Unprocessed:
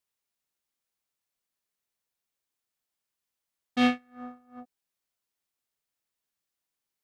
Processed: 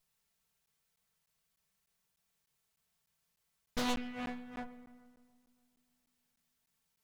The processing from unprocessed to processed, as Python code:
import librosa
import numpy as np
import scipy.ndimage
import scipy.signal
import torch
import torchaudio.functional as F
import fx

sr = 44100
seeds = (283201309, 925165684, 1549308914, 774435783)

p1 = fx.lower_of_two(x, sr, delay_ms=4.5)
p2 = fx.low_shelf_res(p1, sr, hz=200.0, db=6.5, q=3.0)
p3 = fx.over_compress(p2, sr, threshold_db=-28.0, ratio=-0.5)
p4 = 10.0 ** (-33.0 / 20.0) * np.tanh(p3 / 10.0 ** (-33.0 / 20.0))
p5 = p4 + fx.echo_filtered(p4, sr, ms=142, feedback_pct=71, hz=2300.0, wet_db=-18.0, dry=0)
p6 = fx.rev_spring(p5, sr, rt60_s=1.4, pass_ms=(57,), chirp_ms=80, drr_db=12.0)
p7 = fx.buffer_crackle(p6, sr, first_s=0.66, period_s=0.3, block=512, kind='zero')
p8 = fx.doppler_dist(p7, sr, depth_ms=0.72)
y = p8 * librosa.db_to_amplitude(4.0)